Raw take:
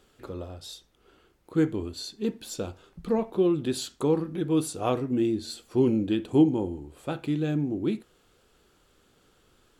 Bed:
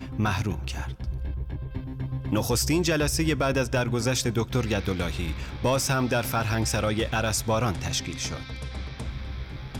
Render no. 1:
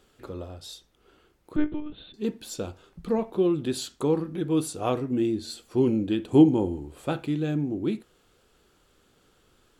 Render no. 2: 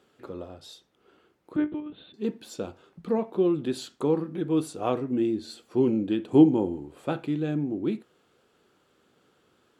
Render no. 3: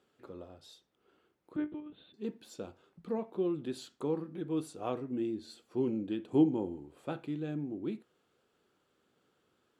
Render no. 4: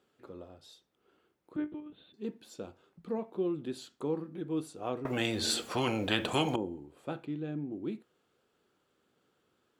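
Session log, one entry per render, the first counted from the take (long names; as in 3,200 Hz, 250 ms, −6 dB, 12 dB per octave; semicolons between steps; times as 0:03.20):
0:01.56–0:02.14: one-pitch LPC vocoder at 8 kHz 300 Hz; 0:06.32–0:07.23: clip gain +3.5 dB
high-pass filter 140 Hz 12 dB per octave; high-shelf EQ 4,100 Hz −9 dB
level −9 dB
0:05.05–0:06.56: every bin compressed towards the loudest bin 4 to 1; 0:07.25–0:07.72: high-frequency loss of the air 100 metres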